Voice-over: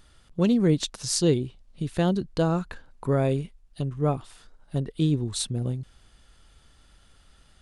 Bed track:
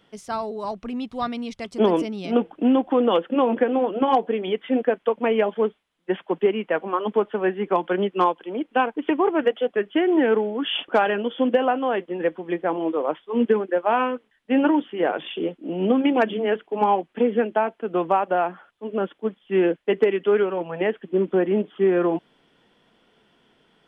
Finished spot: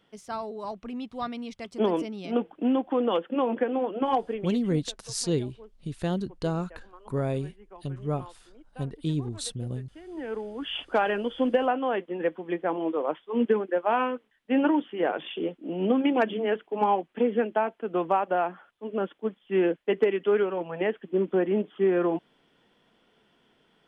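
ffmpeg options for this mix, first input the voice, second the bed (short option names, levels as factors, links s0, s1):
-filter_complex "[0:a]adelay=4050,volume=0.562[s0];[1:a]volume=7.08,afade=t=out:st=4.2:d=0.62:silence=0.0891251,afade=t=in:st=10.04:d=1.07:silence=0.0707946[s1];[s0][s1]amix=inputs=2:normalize=0"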